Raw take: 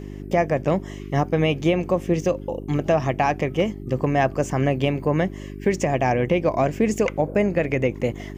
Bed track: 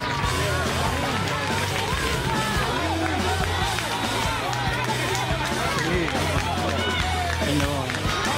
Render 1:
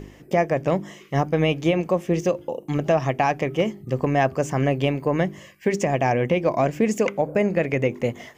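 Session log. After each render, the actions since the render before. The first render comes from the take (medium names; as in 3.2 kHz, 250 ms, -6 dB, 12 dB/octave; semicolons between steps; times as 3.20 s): de-hum 50 Hz, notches 8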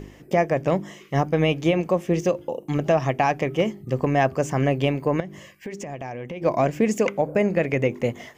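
5.20–6.42 s: compression 4:1, threshold -32 dBFS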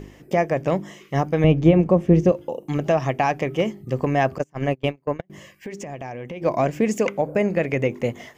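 1.44–2.32 s: tilt EQ -3.5 dB/octave; 4.38–5.30 s: gate -21 dBFS, range -32 dB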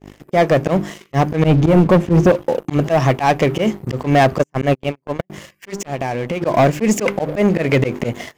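slow attack 101 ms; waveshaping leveller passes 3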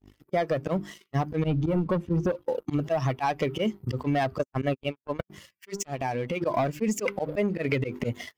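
expander on every frequency bin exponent 1.5; compression 10:1, threshold -23 dBFS, peak gain reduction 14 dB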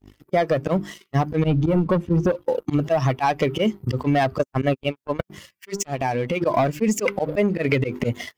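trim +6 dB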